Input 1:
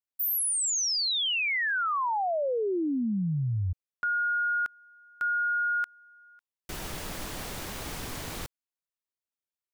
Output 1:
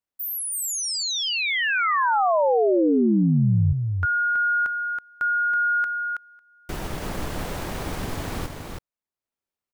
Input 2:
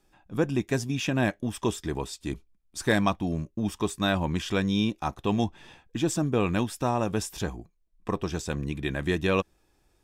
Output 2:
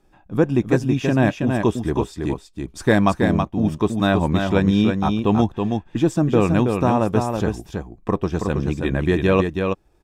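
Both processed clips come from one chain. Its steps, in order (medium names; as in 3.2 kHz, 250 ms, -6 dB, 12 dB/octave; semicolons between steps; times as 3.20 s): treble shelf 2 kHz -10 dB; transient shaper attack 0 dB, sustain -4 dB; delay 325 ms -5 dB; trim +8.5 dB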